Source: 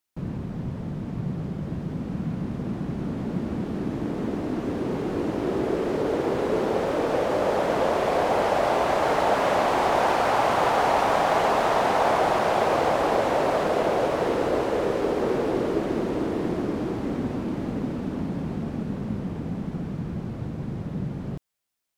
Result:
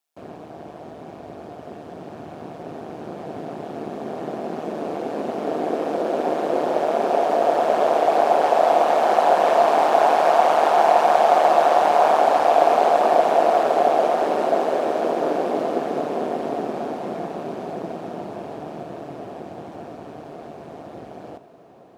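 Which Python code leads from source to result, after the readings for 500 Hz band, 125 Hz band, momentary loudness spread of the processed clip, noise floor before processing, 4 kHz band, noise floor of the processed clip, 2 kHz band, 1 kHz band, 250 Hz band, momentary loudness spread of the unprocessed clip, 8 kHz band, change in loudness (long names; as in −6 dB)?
+5.0 dB, below −10 dB, 22 LU, −34 dBFS, 0.0 dB, −40 dBFS, 0.0 dB, +6.5 dB, −3.0 dB, 10 LU, can't be measured, +6.0 dB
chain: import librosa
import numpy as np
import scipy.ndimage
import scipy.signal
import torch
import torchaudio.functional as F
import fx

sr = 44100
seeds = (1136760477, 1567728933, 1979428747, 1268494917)

p1 = scipy.signal.sosfilt(scipy.signal.butter(4, 290.0, 'highpass', fs=sr, output='sos'), x)
p2 = p1 * np.sin(2.0 * np.pi * 76.0 * np.arange(len(p1)) / sr)
p3 = fx.peak_eq(p2, sr, hz=700.0, db=11.0, octaves=0.38)
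p4 = fx.notch(p3, sr, hz=2000.0, q=17.0)
p5 = p4 + fx.echo_diffused(p4, sr, ms=928, feedback_pct=65, wet_db=-16.0, dry=0)
y = p5 * librosa.db_to_amplitude(3.0)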